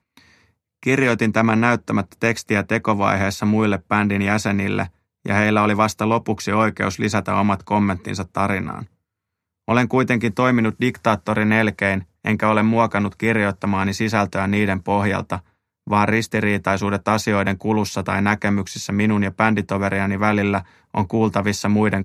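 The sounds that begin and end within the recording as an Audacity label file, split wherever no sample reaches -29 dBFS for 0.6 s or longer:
0.830000	8.840000	sound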